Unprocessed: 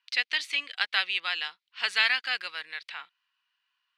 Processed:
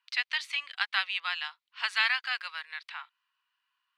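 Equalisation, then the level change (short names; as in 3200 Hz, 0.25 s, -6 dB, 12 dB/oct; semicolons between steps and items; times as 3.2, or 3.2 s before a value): resonant high-pass 990 Hz, resonance Q 2.2; -4.5 dB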